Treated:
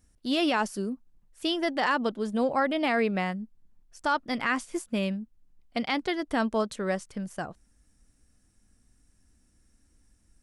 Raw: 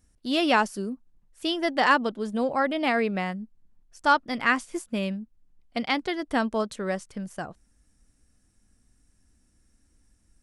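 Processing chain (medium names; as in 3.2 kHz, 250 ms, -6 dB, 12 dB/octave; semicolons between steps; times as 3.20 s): peak limiter -16 dBFS, peak gain reduction 7.5 dB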